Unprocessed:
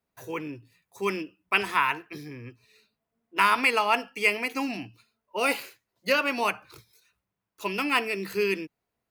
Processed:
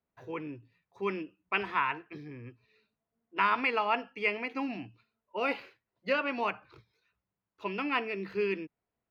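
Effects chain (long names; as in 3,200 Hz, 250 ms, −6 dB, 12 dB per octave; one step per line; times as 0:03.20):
high-frequency loss of the air 290 metres
level −3.5 dB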